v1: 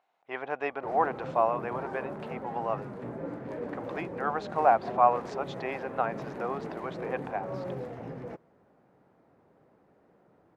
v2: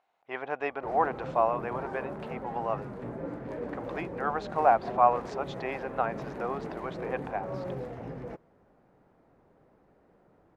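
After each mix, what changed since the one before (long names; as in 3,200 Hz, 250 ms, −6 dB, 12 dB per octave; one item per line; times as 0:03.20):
master: remove high-pass filter 92 Hz 12 dB per octave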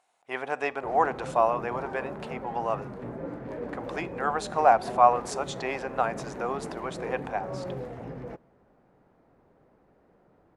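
speech: remove high-frequency loss of the air 220 metres
reverb: on, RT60 0.70 s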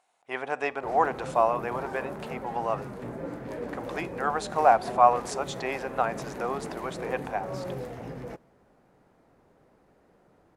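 background: remove low-pass filter 1,900 Hz 6 dB per octave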